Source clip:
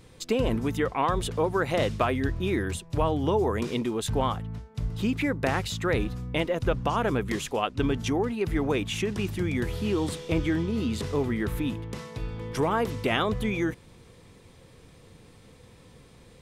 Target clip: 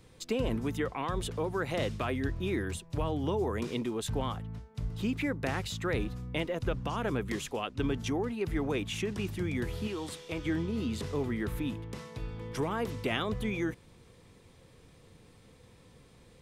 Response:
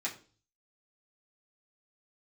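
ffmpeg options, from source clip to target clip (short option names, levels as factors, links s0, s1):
-filter_complex "[0:a]asettb=1/sr,asplit=3[s0][s1][s2];[s0]atrim=end=9.874[s3];[s1]atrim=start=9.87:end=10.45,asetpts=PTS-STARTPTS,afade=t=in:d=0.004:c=qsin,afade=t=out:st=0.576:d=0.004:c=qsin,lowshelf=f=490:g=-9[s4];[s2]atrim=start=10.446[s5];[s3][s4]acrossfade=d=0.004:c1=hsin:c2=qsin[s6];[s6][s5]acrossfade=d=0.004:c1=qsin:c2=hsin,acrossover=split=390|1500[s7][s8][s9];[s8]alimiter=level_in=1.06:limit=0.0631:level=0:latency=1,volume=0.944[s10];[s7][s10][s9]amix=inputs=3:normalize=0,volume=0.562"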